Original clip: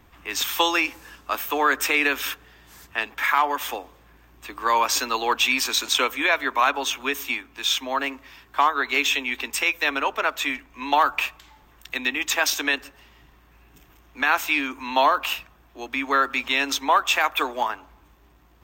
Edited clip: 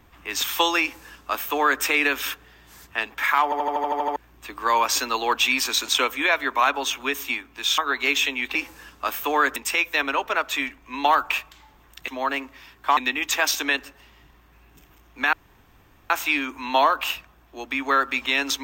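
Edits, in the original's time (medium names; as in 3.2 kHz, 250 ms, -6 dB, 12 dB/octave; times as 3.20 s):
0.81–1.82 s: copy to 9.44 s
3.44 s: stutter in place 0.08 s, 9 plays
7.78–8.67 s: move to 11.96 s
14.32 s: insert room tone 0.77 s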